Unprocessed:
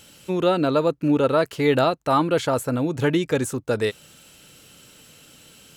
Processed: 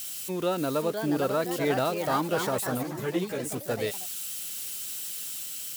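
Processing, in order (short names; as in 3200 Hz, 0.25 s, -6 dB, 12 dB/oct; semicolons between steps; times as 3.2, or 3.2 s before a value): switching spikes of -23 dBFS; echoes that change speed 0.58 s, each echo +3 st, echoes 3, each echo -6 dB; 2.83–3.52 ensemble effect; gain -8 dB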